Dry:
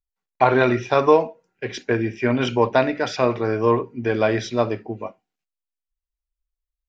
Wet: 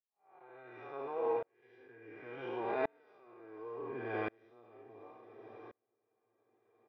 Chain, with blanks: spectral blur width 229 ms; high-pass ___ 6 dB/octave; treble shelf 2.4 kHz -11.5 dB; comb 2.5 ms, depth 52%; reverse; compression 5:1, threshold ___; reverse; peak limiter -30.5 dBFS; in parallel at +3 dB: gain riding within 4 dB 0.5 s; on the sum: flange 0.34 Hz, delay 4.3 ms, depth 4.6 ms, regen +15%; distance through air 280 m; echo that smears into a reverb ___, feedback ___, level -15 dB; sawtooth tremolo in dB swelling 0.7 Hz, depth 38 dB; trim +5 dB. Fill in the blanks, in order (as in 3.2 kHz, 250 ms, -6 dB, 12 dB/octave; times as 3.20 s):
1 kHz, -36 dBFS, 553 ms, 47%